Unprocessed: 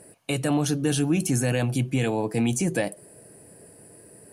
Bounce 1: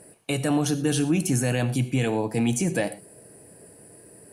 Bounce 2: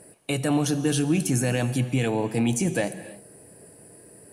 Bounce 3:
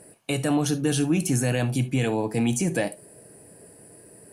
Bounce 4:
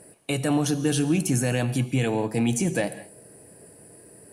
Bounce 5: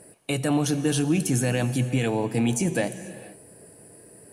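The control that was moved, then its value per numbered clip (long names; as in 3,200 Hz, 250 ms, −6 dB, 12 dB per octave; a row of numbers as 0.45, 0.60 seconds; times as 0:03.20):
reverb whose tail is shaped and stops, gate: 140, 340, 90, 230, 510 milliseconds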